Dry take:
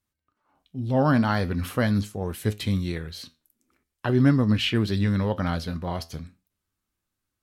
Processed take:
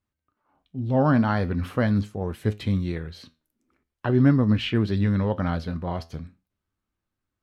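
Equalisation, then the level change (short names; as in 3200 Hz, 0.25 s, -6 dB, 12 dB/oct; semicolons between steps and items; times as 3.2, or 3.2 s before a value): LPF 1900 Hz 6 dB/oct; +1.0 dB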